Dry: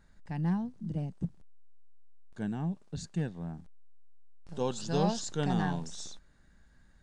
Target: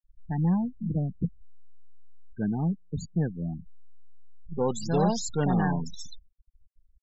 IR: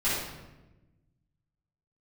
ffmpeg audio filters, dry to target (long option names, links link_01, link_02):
-af "asoftclip=type=tanh:threshold=-23.5dB,afftfilt=real='re*gte(hypot(re,im),0.0158)':imag='im*gte(hypot(re,im),0.0158)':win_size=1024:overlap=0.75,volume=7dB"